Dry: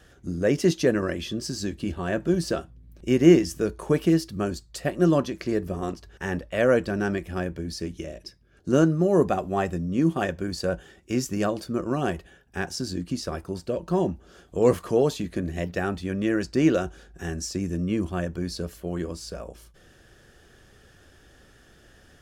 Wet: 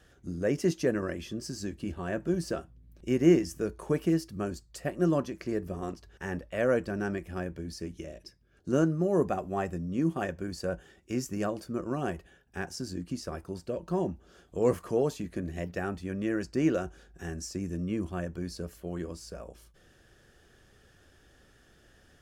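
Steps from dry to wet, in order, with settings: dynamic bell 3.7 kHz, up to -7 dB, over -53 dBFS, Q 2.2; trim -6 dB

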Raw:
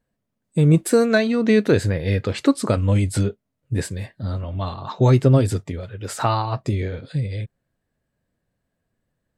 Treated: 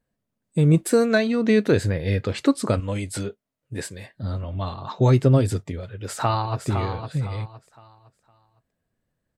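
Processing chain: 2.80–4.15 s: bass shelf 230 Hz -11.5 dB; 5.78–6.66 s: echo throw 510 ms, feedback 30%, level -7 dB; trim -2 dB

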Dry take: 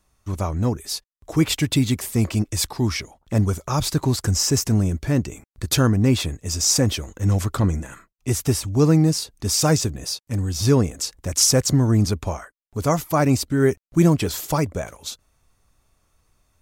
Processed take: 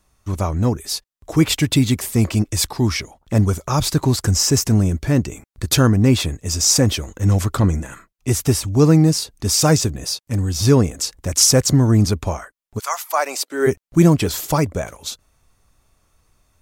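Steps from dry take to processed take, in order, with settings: 12.78–13.66 s: high-pass 1.1 kHz -> 330 Hz 24 dB/octave; trim +3.5 dB

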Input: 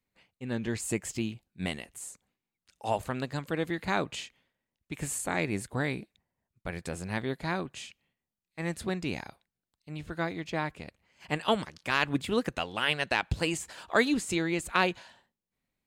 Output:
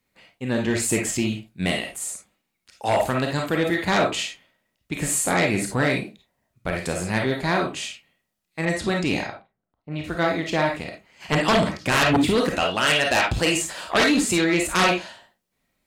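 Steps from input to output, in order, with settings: 11.32–12.31 s: bass shelf 410 Hz +9 dB; reverberation RT60 0.25 s, pre-delay 10 ms, DRR 1.5 dB; sine folder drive 11 dB, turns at -8.5 dBFS; 8.65–10.04 s: level-controlled noise filter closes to 910 Hz, open at -13.5 dBFS; bass shelf 62 Hz -9 dB; trim -5 dB

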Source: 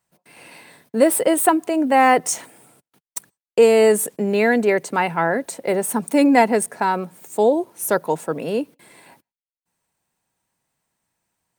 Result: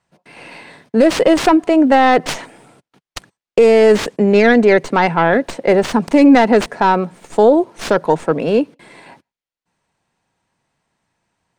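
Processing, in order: tracing distortion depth 0.31 ms; distance through air 93 m; loudness maximiser +9.5 dB; trim -1 dB

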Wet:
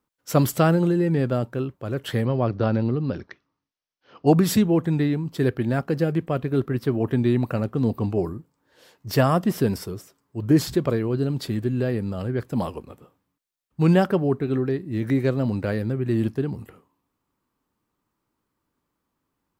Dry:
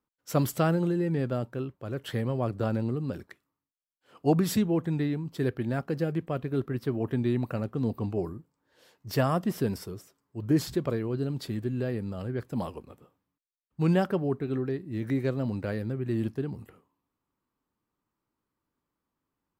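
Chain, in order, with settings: 2.25–4.27 s: steep low-pass 6.2 kHz 96 dB/octave; trim +6.5 dB

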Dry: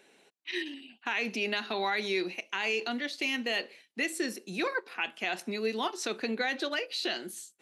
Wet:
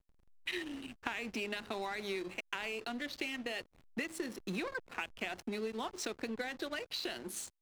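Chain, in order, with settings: compression 16:1, threshold -42 dBFS, peak gain reduction 16.5 dB; hysteresis with a dead band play -46.5 dBFS; trim +7.5 dB

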